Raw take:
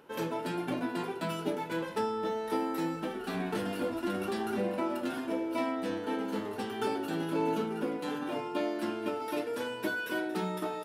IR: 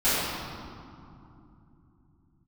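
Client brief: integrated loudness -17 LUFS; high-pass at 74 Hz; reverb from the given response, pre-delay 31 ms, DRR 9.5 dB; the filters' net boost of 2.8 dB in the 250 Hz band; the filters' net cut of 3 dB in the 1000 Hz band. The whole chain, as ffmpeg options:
-filter_complex "[0:a]highpass=74,equalizer=f=250:t=o:g=4,equalizer=f=1k:t=o:g=-4,asplit=2[a][b];[1:a]atrim=start_sample=2205,adelay=31[c];[b][c]afir=irnorm=-1:irlink=0,volume=-26dB[d];[a][d]amix=inputs=2:normalize=0,volume=15dB"

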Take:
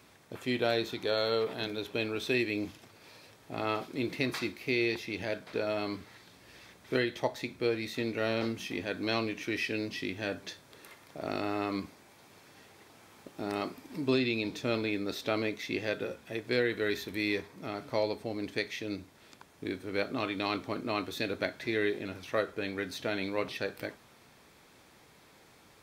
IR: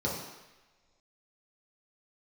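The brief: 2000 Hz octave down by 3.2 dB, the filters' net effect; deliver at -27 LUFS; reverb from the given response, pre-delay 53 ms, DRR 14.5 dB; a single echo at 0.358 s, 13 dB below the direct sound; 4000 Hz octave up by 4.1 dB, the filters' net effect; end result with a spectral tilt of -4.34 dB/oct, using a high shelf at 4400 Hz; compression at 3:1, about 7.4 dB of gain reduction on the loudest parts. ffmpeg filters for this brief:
-filter_complex "[0:a]equalizer=f=2k:t=o:g=-6.5,equalizer=f=4k:t=o:g=4.5,highshelf=f=4.4k:g=3.5,acompressor=threshold=-34dB:ratio=3,aecho=1:1:358:0.224,asplit=2[a][b];[1:a]atrim=start_sample=2205,adelay=53[c];[b][c]afir=irnorm=-1:irlink=0,volume=-22.5dB[d];[a][d]amix=inputs=2:normalize=0,volume=11dB"

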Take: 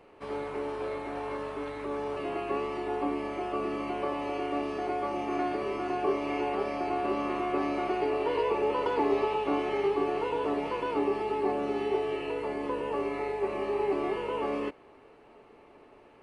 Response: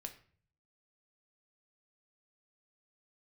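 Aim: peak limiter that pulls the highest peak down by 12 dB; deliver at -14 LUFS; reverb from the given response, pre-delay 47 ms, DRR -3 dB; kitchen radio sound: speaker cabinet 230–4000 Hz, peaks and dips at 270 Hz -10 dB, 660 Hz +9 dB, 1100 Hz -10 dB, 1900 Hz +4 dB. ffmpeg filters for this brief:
-filter_complex "[0:a]alimiter=level_in=4.5dB:limit=-24dB:level=0:latency=1,volume=-4.5dB,asplit=2[a][b];[1:a]atrim=start_sample=2205,adelay=47[c];[b][c]afir=irnorm=-1:irlink=0,volume=7dB[d];[a][d]amix=inputs=2:normalize=0,highpass=230,equalizer=f=270:t=q:w=4:g=-10,equalizer=f=660:t=q:w=4:g=9,equalizer=f=1.1k:t=q:w=4:g=-10,equalizer=f=1.9k:t=q:w=4:g=4,lowpass=f=4k:w=0.5412,lowpass=f=4k:w=1.3066,volume=17.5dB"

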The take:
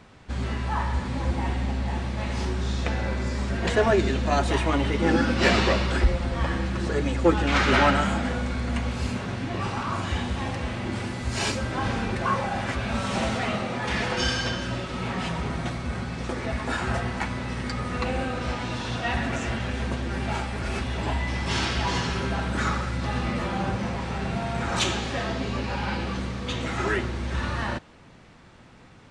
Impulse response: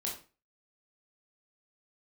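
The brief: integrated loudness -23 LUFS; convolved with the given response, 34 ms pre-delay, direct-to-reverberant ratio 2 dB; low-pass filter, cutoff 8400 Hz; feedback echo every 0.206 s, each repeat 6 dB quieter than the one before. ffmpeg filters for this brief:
-filter_complex "[0:a]lowpass=8.4k,aecho=1:1:206|412|618|824|1030|1236:0.501|0.251|0.125|0.0626|0.0313|0.0157,asplit=2[a][b];[1:a]atrim=start_sample=2205,adelay=34[c];[b][c]afir=irnorm=-1:irlink=0,volume=-3.5dB[d];[a][d]amix=inputs=2:normalize=0,volume=0.5dB"

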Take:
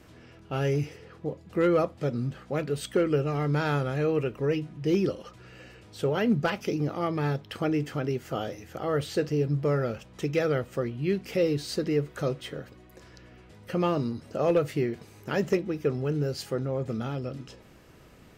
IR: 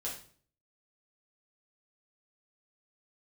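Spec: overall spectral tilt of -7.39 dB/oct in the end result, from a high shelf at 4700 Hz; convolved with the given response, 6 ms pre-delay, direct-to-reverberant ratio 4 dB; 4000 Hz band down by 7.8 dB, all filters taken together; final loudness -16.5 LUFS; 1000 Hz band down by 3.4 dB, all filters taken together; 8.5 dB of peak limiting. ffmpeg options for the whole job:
-filter_complex "[0:a]equalizer=f=1k:t=o:g=-4,equalizer=f=4k:t=o:g=-8.5,highshelf=f=4.7k:g=-4.5,alimiter=limit=-24dB:level=0:latency=1,asplit=2[a][b];[1:a]atrim=start_sample=2205,adelay=6[c];[b][c]afir=irnorm=-1:irlink=0,volume=-5dB[d];[a][d]amix=inputs=2:normalize=0,volume=14.5dB"

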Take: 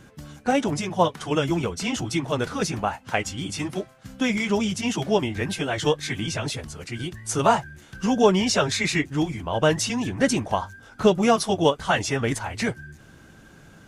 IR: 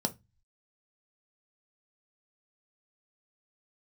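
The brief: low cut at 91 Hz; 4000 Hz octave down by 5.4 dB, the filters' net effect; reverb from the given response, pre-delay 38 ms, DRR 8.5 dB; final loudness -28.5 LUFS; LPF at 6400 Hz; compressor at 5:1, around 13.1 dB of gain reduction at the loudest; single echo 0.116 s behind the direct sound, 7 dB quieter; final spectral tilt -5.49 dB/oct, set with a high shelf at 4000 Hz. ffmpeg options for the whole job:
-filter_complex "[0:a]highpass=91,lowpass=6.4k,highshelf=f=4k:g=-4,equalizer=f=4k:t=o:g=-4.5,acompressor=threshold=-28dB:ratio=5,aecho=1:1:116:0.447,asplit=2[a][b];[1:a]atrim=start_sample=2205,adelay=38[c];[b][c]afir=irnorm=-1:irlink=0,volume=-13.5dB[d];[a][d]amix=inputs=2:normalize=0,volume=1.5dB"

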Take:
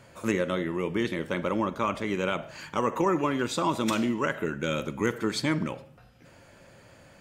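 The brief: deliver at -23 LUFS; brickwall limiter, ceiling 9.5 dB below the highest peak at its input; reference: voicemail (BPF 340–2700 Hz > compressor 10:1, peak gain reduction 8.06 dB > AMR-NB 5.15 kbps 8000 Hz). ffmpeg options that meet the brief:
-af "alimiter=limit=-22.5dB:level=0:latency=1,highpass=340,lowpass=2.7k,acompressor=threshold=-35dB:ratio=10,volume=19.5dB" -ar 8000 -c:a libopencore_amrnb -b:a 5150

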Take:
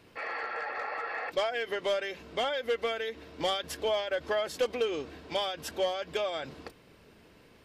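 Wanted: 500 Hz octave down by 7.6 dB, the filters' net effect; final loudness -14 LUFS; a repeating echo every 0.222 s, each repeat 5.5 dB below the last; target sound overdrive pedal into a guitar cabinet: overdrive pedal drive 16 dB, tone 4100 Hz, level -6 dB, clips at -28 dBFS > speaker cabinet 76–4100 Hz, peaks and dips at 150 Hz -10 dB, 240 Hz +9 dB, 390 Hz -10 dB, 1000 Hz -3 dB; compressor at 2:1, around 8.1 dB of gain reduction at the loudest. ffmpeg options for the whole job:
-filter_complex "[0:a]equalizer=f=500:t=o:g=-7,acompressor=threshold=-44dB:ratio=2,aecho=1:1:222|444|666|888|1110|1332|1554:0.531|0.281|0.149|0.079|0.0419|0.0222|0.0118,asplit=2[a][b];[b]highpass=f=720:p=1,volume=16dB,asoftclip=type=tanh:threshold=-28dB[c];[a][c]amix=inputs=2:normalize=0,lowpass=f=4.1k:p=1,volume=-6dB,highpass=76,equalizer=f=150:t=q:w=4:g=-10,equalizer=f=240:t=q:w=4:g=9,equalizer=f=390:t=q:w=4:g=-10,equalizer=f=1k:t=q:w=4:g=-3,lowpass=f=4.1k:w=0.5412,lowpass=f=4.1k:w=1.3066,volume=22.5dB"

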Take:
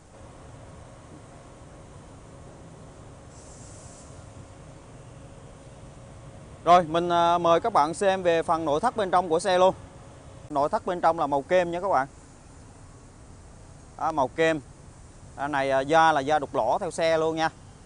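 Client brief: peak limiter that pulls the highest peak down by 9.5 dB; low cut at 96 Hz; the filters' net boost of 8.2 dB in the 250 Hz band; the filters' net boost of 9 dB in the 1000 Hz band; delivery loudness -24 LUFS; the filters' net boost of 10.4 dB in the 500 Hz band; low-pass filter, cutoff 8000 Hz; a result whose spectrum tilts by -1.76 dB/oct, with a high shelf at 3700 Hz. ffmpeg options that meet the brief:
-af "highpass=96,lowpass=8k,equalizer=f=250:t=o:g=7,equalizer=f=500:t=o:g=9,equalizer=f=1k:t=o:g=8,highshelf=f=3.7k:g=-5,volume=-6dB,alimiter=limit=-13dB:level=0:latency=1"

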